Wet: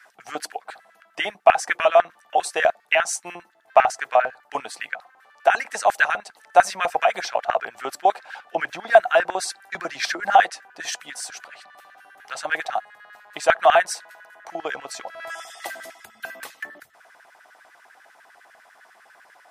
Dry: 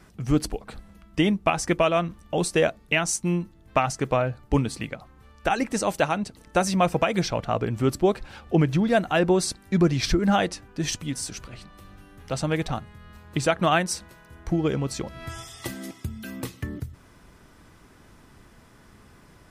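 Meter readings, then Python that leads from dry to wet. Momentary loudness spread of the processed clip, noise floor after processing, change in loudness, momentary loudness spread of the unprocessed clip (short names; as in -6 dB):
18 LU, -57 dBFS, +3.0 dB, 14 LU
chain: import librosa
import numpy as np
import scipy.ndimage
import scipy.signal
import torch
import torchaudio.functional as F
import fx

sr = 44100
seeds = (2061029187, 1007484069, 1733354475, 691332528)

y = fx.filter_lfo_highpass(x, sr, shape='square', hz=10.0, low_hz=730.0, high_hz=1600.0, q=5.9)
y = F.gain(torch.from_numpy(y), -1.0).numpy()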